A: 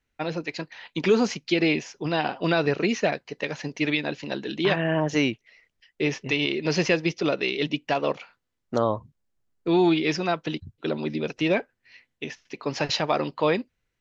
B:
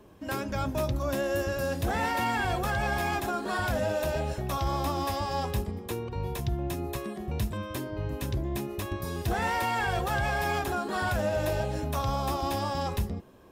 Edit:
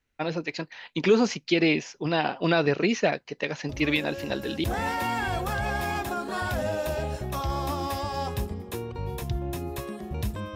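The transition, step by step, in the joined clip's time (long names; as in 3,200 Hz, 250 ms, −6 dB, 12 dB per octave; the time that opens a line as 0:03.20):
A
0:03.69: mix in B from 0:00.86 0.95 s −9 dB
0:04.64: continue with B from 0:01.81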